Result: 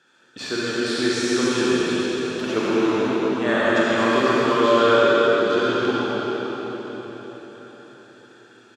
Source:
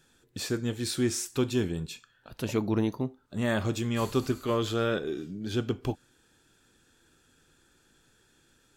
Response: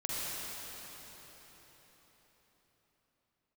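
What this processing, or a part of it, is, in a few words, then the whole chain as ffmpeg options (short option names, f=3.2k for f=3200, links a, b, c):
station announcement: -filter_complex "[0:a]highpass=320,lowpass=4.7k,equalizer=f=1.4k:t=o:w=0.57:g=5.5,aecho=1:1:137|256.6:0.355|0.355[a];[1:a]atrim=start_sample=2205[b];[a][b]afir=irnorm=-1:irlink=0,volume=6.5dB"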